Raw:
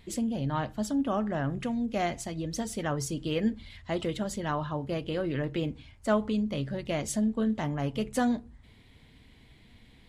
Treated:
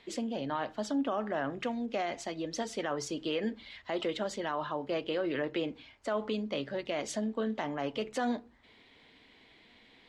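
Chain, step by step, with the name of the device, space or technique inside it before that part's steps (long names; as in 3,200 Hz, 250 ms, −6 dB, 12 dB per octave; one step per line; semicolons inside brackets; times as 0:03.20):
DJ mixer with the lows and highs turned down (three-way crossover with the lows and the highs turned down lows −21 dB, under 280 Hz, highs −21 dB, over 6,100 Hz; brickwall limiter −25.5 dBFS, peak gain reduction 10 dB)
level +2.5 dB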